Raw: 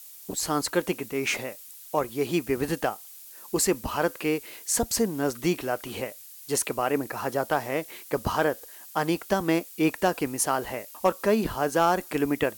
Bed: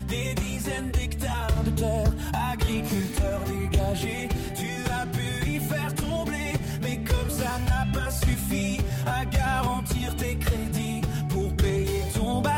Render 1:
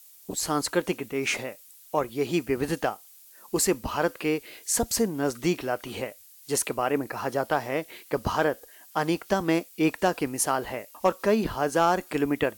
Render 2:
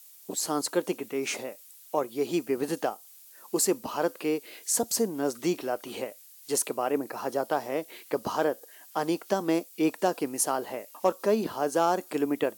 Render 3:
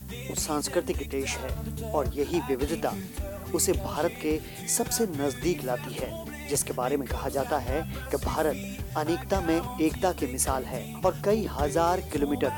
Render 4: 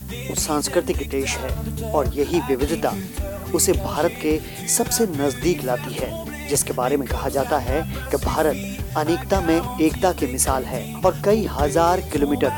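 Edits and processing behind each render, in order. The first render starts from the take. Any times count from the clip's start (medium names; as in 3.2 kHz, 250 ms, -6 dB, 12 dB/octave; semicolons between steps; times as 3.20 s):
noise print and reduce 6 dB
high-pass 240 Hz 12 dB/octave; dynamic bell 2 kHz, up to -8 dB, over -43 dBFS, Q 0.81
add bed -9.5 dB
trim +7 dB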